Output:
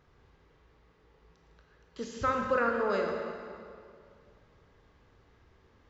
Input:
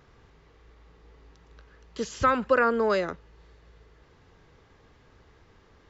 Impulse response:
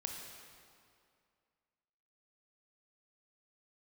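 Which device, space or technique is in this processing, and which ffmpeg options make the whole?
swimming-pool hall: -filter_complex "[1:a]atrim=start_sample=2205[a];[0:a][a]afir=irnorm=-1:irlink=0,highshelf=f=5.2k:g=-4,volume=-4.5dB"

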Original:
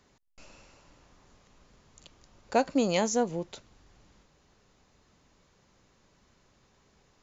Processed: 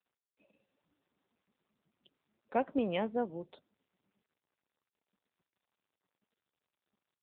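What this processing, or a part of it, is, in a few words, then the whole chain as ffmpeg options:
mobile call with aggressive noise cancelling: -af "highpass=f=140:w=0.5412,highpass=f=140:w=1.3066,afftdn=nr=29:nf=-48,volume=-5.5dB" -ar 8000 -c:a libopencore_amrnb -b:a 7950

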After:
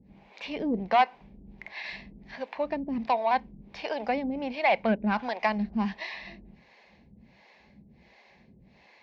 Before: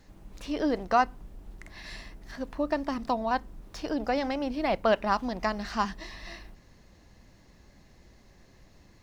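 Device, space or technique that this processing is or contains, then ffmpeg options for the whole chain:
guitar amplifier with harmonic tremolo: -filter_complex "[0:a]asettb=1/sr,asplit=3[a][b][c];[a]atrim=end=4.884[d];[b]atrim=start=4.88:end=5.31,asetpts=PTS-STARTPTS,afade=t=in:d=0.004:c=qsin,afade=t=out:st=0.426:d=0.004:c=qsin,equalizer=f=1.5k:w=4.6:g=13.5[e];[c]atrim=start=5.306[f];[d][e]acrossfade=d=0.004:c1=hsin:c2=qsin[g];[g][f]acrossfade=d=0.004:c1=qsin:c2=hsin,acrossover=split=420[h][i];[h]aeval=exprs='val(0)*(1-1/2+1/2*cos(2*PI*1.4*n/s))':c=same[j];[i]aeval=exprs='val(0)*(1-1/2-1/2*cos(2*PI*1.4*n/s))':c=same[k];[j][k]amix=inputs=2:normalize=0,asoftclip=type=tanh:threshold=-21dB,highpass=85,equalizer=f=97:t=q:w=4:g=-10,equalizer=f=210:t=q:w=4:g=6,equalizer=f=310:t=q:w=4:g=-7,equalizer=f=840:t=q:w=4:g=5,equalizer=f=1.3k:t=q:w=4:g=-9,equalizer=f=2.3k:t=q:w=4:g=10,lowpass=f=4.3k:w=0.5412,lowpass=f=4.3k:w=1.3066,volume=6dB"

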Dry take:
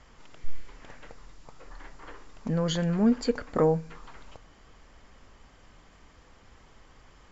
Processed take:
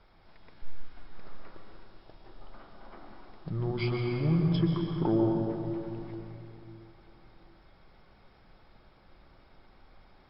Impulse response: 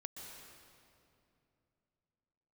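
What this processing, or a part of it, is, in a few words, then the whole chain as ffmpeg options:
slowed and reverbed: -filter_complex "[0:a]asetrate=31311,aresample=44100[a];[1:a]atrim=start_sample=2205[b];[a][b]afir=irnorm=-1:irlink=0"

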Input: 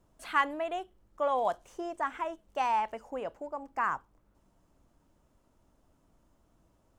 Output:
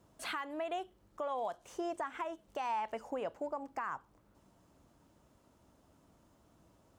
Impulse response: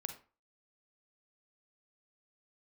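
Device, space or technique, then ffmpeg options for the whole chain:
broadcast voice chain: -af "highpass=70,deesser=0.95,acompressor=threshold=-35dB:ratio=4,equalizer=f=4.1k:t=o:w=0.77:g=2,alimiter=level_in=8dB:limit=-24dB:level=0:latency=1:release=283,volume=-8dB,volume=3.5dB"

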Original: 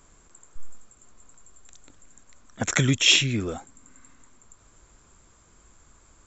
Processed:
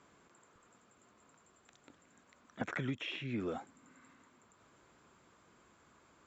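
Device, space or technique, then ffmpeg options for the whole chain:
AM radio: -filter_complex "[0:a]highpass=160,lowpass=3.7k,acompressor=threshold=-30dB:ratio=6,asoftclip=type=tanh:threshold=-19dB,acrossover=split=2600[a][b];[b]acompressor=threshold=-55dB:ratio=4:attack=1:release=60[c];[a][c]amix=inputs=2:normalize=0,volume=-3dB"

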